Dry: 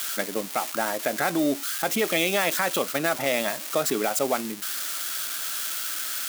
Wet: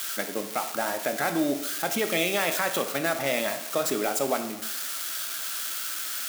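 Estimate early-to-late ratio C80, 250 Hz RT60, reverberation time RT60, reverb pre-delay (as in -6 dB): 12.5 dB, 0.90 s, 0.95 s, 10 ms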